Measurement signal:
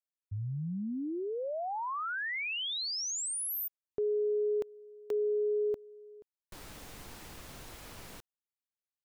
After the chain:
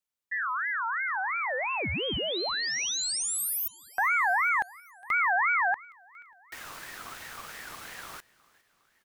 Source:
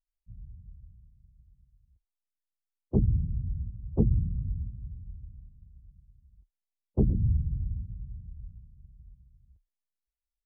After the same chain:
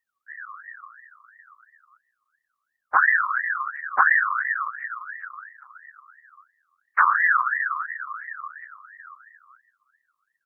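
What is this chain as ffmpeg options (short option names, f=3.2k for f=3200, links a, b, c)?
-af "aecho=1:1:409|818|1227|1636:0.0668|0.0388|0.0225|0.013,aeval=exprs='val(0)*sin(2*PI*1500*n/s+1500*0.25/2.9*sin(2*PI*2.9*n/s))':c=same,volume=8dB"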